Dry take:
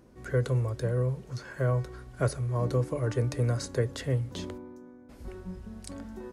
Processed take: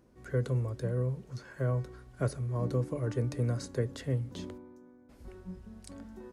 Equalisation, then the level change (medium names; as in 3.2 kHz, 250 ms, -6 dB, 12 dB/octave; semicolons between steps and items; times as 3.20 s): dynamic bell 220 Hz, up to +7 dB, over -41 dBFS, Q 0.9; -6.5 dB